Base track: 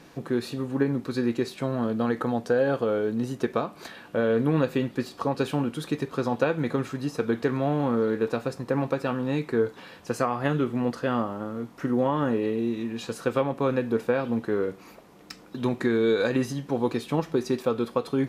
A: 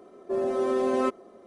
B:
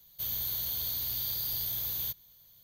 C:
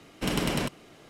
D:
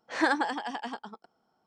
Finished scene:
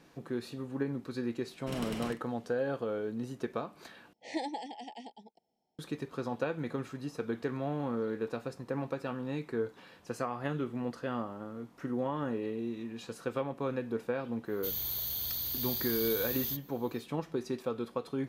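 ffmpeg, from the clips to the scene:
ffmpeg -i bed.wav -i cue0.wav -i cue1.wav -i cue2.wav -i cue3.wav -filter_complex "[0:a]volume=-9.5dB[link_01];[3:a]asplit=2[link_02][link_03];[link_03]adelay=45,volume=-12dB[link_04];[link_02][link_04]amix=inputs=2:normalize=0[link_05];[4:a]asuperstop=centerf=1300:order=12:qfactor=1.3[link_06];[link_01]asplit=2[link_07][link_08];[link_07]atrim=end=4.134[link_09];[link_06]atrim=end=1.66,asetpts=PTS-STARTPTS,volume=-8dB[link_10];[link_08]atrim=start=5.786[link_11];[link_05]atrim=end=1.09,asetpts=PTS-STARTPTS,volume=-12.5dB,afade=type=in:duration=0.004:curve=hsin,afade=type=out:start_time=1.086:duration=0.004:curve=hsin,adelay=1450[link_12];[2:a]atrim=end=2.63,asetpts=PTS-STARTPTS,volume=-2dB,afade=type=in:duration=0.1,afade=type=out:start_time=2.53:duration=0.1,adelay=636804S[link_13];[link_09][link_10]acrossfade=duration=0.004:curve1=hsin:curve2=hsin[link_14];[link_14][link_11]acrossfade=duration=0.004:curve1=hsin:curve2=hsin[link_15];[link_15][link_12][link_13]amix=inputs=3:normalize=0" out.wav

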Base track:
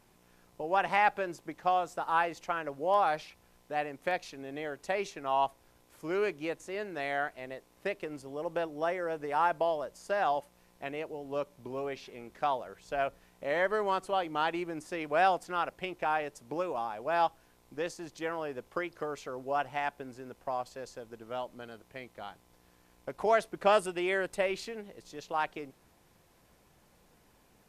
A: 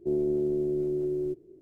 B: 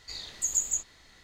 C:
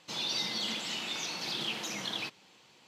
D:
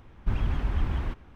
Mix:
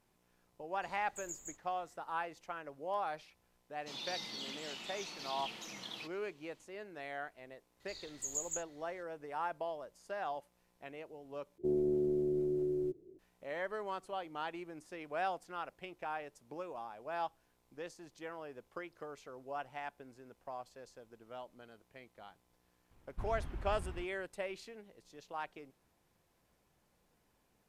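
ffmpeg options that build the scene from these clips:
ffmpeg -i bed.wav -i cue0.wav -i cue1.wav -i cue2.wav -i cue3.wav -filter_complex "[2:a]asplit=2[link_01][link_02];[0:a]volume=-10.5dB[link_03];[link_01]equalizer=frequency=4400:width_type=o:width=1.1:gain=-13[link_04];[3:a]bandreject=frequency=1600:width=18[link_05];[link_03]asplit=2[link_06][link_07];[link_06]atrim=end=11.584[link_08];[1:a]atrim=end=1.61,asetpts=PTS-STARTPTS,volume=-5dB[link_09];[link_07]atrim=start=13.186[link_10];[link_04]atrim=end=1.23,asetpts=PTS-STARTPTS,volume=-14dB,afade=type=in:duration=0.004:curve=hsin,afade=type=out:start_time=1.226:duration=0.004:curve=hsin,adelay=740[link_11];[link_05]atrim=end=2.87,asetpts=PTS-STARTPTS,volume=-10dB,afade=type=in:duration=0.004:curve=hsin,afade=type=out:start_time=2.866:duration=0.004:curve=hsin,adelay=3780[link_12];[link_02]atrim=end=1.23,asetpts=PTS-STARTPTS,volume=-11.5dB,afade=type=in:duration=0.004:curve=hsin,afade=type=out:start_time=1.226:duration=0.004:curve=hsin,adelay=7800[link_13];[4:a]atrim=end=1.35,asetpts=PTS-STARTPTS,volume=-15.5dB,afade=type=in:duration=0.004:curve=hsin,afade=type=out:start_time=1.346:duration=0.004:curve=hsin,adelay=22910[link_14];[link_08][link_09]acrossfade=duration=0.004:curve1=hsin:curve2=hsin[link_15];[link_15][link_10]acrossfade=duration=0.004:curve1=hsin:curve2=hsin[link_16];[link_16][link_11][link_12][link_13][link_14]amix=inputs=5:normalize=0" out.wav

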